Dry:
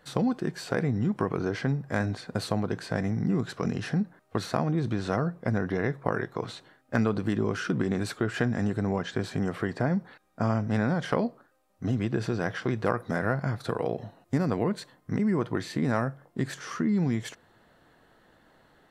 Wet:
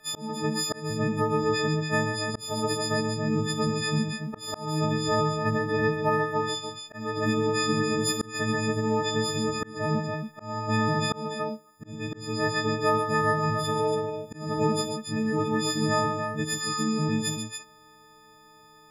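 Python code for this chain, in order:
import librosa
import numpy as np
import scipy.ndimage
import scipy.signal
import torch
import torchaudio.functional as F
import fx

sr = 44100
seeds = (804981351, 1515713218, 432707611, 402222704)

y = fx.freq_snap(x, sr, grid_st=6)
y = fx.echo_multitap(y, sr, ms=(52, 67, 77, 134, 282), db=(-14.5, -20.0, -13.0, -7.5, -6.5))
y = fx.auto_swell(y, sr, attack_ms=306.0)
y = y * 10.0 ** (-1.5 / 20.0)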